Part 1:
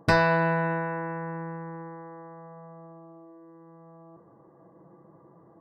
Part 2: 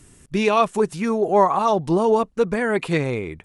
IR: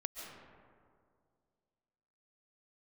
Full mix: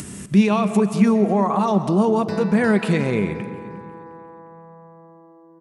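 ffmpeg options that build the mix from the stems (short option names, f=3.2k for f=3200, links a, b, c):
-filter_complex "[0:a]acrossover=split=350|3000[a][b][c];[b]acompressor=threshold=-38dB:ratio=2[d];[a][d][c]amix=inputs=3:normalize=0,adelay=2200,volume=-1.5dB,asplit=3[e][f][g];[f]volume=-10.5dB[h];[g]volume=-9dB[i];[1:a]alimiter=limit=-16.5dB:level=0:latency=1:release=120,acompressor=mode=upward:threshold=-28dB:ratio=2.5,volume=0dB,asplit=4[j][k][l][m];[k]volume=-3.5dB[n];[l]volume=-17.5dB[o];[m]apad=whole_len=344390[p];[e][p]sidechaincompress=threshold=-31dB:ratio=8:attack=16:release=1050[q];[2:a]atrim=start_sample=2205[r];[h][n]amix=inputs=2:normalize=0[s];[s][r]afir=irnorm=-1:irlink=0[t];[i][o]amix=inputs=2:normalize=0,aecho=0:1:355|710|1065|1420|1775:1|0.34|0.116|0.0393|0.0134[u];[q][j][t][u]amix=inputs=4:normalize=0,highpass=82,equalizer=f=200:t=o:w=0.28:g=14.5"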